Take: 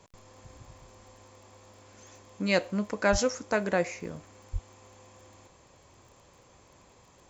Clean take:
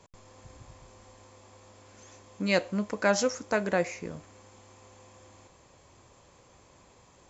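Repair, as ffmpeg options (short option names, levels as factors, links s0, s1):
-filter_complex "[0:a]adeclick=t=4,asplit=3[s0][s1][s2];[s0]afade=t=out:st=3.11:d=0.02[s3];[s1]highpass=f=140:w=0.5412,highpass=f=140:w=1.3066,afade=t=in:st=3.11:d=0.02,afade=t=out:st=3.23:d=0.02[s4];[s2]afade=t=in:st=3.23:d=0.02[s5];[s3][s4][s5]amix=inputs=3:normalize=0,asplit=3[s6][s7][s8];[s6]afade=t=out:st=4.52:d=0.02[s9];[s7]highpass=f=140:w=0.5412,highpass=f=140:w=1.3066,afade=t=in:st=4.52:d=0.02,afade=t=out:st=4.64:d=0.02[s10];[s8]afade=t=in:st=4.64:d=0.02[s11];[s9][s10][s11]amix=inputs=3:normalize=0"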